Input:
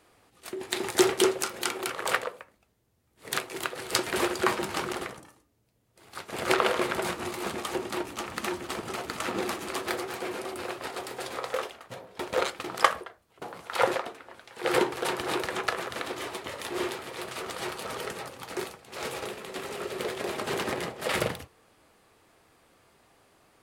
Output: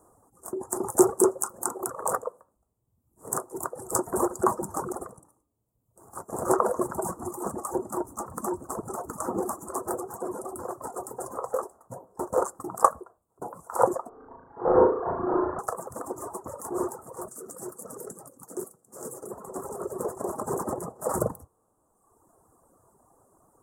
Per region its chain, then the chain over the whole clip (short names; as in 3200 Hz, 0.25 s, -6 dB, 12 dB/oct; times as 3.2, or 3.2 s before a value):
14.09–15.59 CVSD 16 kbps + doubler 24 ms -6.5 dB + flutter echo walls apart 6.1 m, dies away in 1.1 s
17.28–19.31 HPF 170 Hz + bell 910 Hz -13.5 dB 1.4 oct
whole clip: elliptic band-stop 1100–7600 Hz, stop band 60 dB; reverb removal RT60 1.3 s; bell 3800 Hz +4 dB 2.9 oct; gain +4 dB